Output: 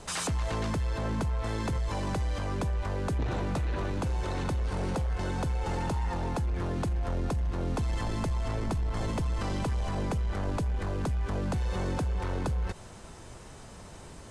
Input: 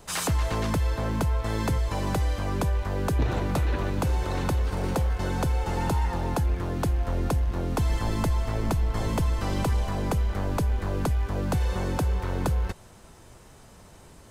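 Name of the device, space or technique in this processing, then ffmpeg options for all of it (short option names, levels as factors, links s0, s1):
soft clipper into limiter: -af "asoftclip=type=tanh:threshold=0.1,alimiter=level_in=1.68:limit=0.0631:level=0:latency=1:release=59,volume=0.596,lowpass=f=10000:w=0.5412,lowpass=f=10000:w=1.3066,volume=1.5"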